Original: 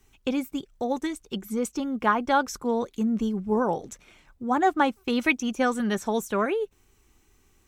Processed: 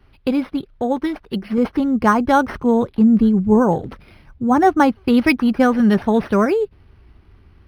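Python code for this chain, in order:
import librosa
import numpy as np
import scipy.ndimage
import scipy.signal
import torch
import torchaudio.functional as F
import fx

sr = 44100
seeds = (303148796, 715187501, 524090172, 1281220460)

y = fx.peak_eq(x, sr, hz=85.0, db=fx.steps((0.0, 6.0), (1.58, 14.0)), octaves=2.5)
y = np.interp(np.arange(len(y)), np.arange(len(y))[::6], y[::6])
y = y * librosa.db_to_amplitude(6.5)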